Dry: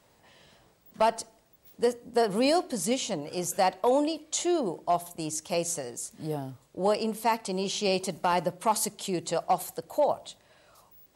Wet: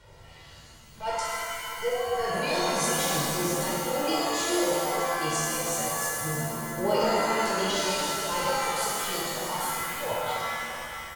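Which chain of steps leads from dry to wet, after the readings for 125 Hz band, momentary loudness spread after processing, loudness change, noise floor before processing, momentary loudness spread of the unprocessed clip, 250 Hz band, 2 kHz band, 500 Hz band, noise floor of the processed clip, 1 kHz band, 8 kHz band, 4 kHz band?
+3.0 dB, 6 LU, +1.0 dB, -64 dBFS, 10 LU, -1.5 dB, +9.5 dB, -1.0 dB, -50 dBFS, +1.0 dB, +4.5 dB, +5.0 dB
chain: RIAA curve playback; reverb removal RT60 1.8 s; tilt shelf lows -8 dB, about 1400 Hz; comb 2.1 ms, depth 76%; in parallel at -0.5 dB: level quantiser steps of 9 dB; on the sum: limiter -23.5 dBFS, peak gain reduction 13.5 dB; transient shaper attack -11 dB, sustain -7 dB; flange 0.29 Hz, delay 0 ms, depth 2.2 ms, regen +40%; random-step tremolo 3.5 Hz; echo 0.633 s -14.5 dB; shimmer reverb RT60 2.2 s, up +7 st, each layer -2 dB, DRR -7 dB; gain +4.5 dB

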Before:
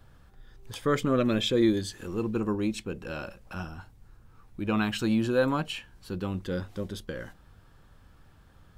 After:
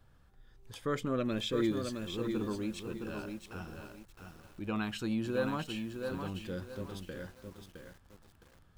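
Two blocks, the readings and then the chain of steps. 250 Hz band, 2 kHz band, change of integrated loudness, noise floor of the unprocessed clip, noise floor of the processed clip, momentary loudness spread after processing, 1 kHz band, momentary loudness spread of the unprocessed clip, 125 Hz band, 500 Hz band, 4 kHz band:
-7.0 dB, -7.0 dB, -7.0 dB, -57 dBFS, -62 dBFS, 19 LU, -7.0 dB, 15 LU, -7.0 dB, -7.0 dB, -7.0 dB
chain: lo-fi delay 0.664 s, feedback 35%, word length 8-bit, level -5.5 dB; gain -8 dB

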